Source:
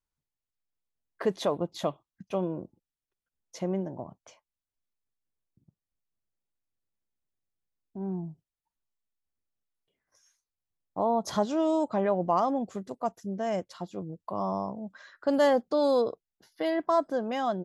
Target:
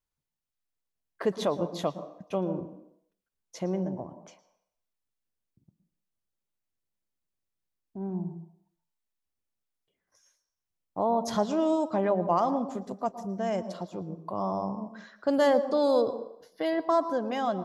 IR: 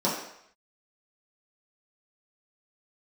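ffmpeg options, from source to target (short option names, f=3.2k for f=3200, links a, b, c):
-filter_complex "[0:a]asplit=2[a][b];[1:a]atrim=start_sample=2205,adelay=112[c];[b][c]afir=irnorm=-1:irlink=0,volume=-26dB[d];[a][d]amix=inputs=2:normalize=0"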